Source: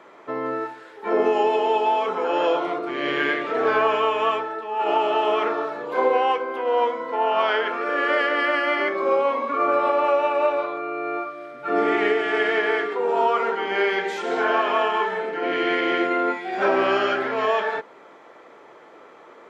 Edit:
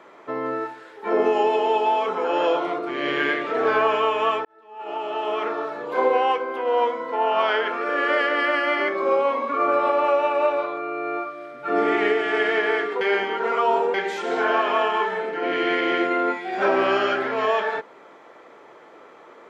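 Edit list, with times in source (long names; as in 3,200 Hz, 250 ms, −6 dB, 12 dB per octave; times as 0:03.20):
0:04.45–0:05.88: fade in
0:13.01–0:13.94: reverse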